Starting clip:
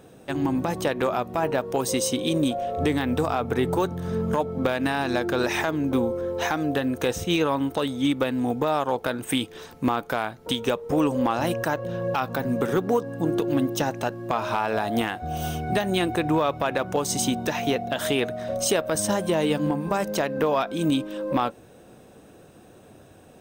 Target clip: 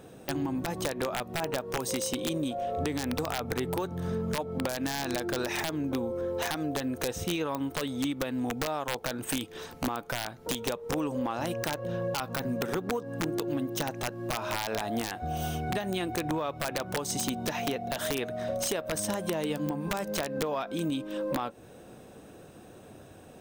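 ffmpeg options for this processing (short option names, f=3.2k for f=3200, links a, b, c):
-af "acompressor=threshold=-29dB:ratio=4,aeval=exprs='(mod(11.9*val(0)+1,2)-1)/11.9':c=same"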